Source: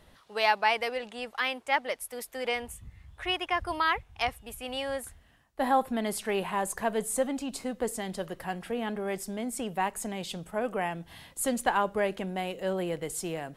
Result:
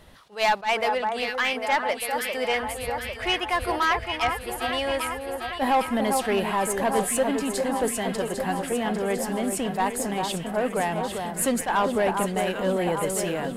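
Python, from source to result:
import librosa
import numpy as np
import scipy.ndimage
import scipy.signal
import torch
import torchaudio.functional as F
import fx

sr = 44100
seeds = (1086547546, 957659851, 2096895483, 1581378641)

y = fx.echo_alternate(x, sr, ms=400, hz=1500.0, feedback_pct=80, wet_db=-6.5)
y = 10.0 ** (-21.0 / 20.0) * np.tanh(y / 10.0 ** (-21.0 / 20.0))
y = fx.attack_slew(y, sr, db_per_s=260.0)
y = y * 10.0 ** (6.5 / 20.0)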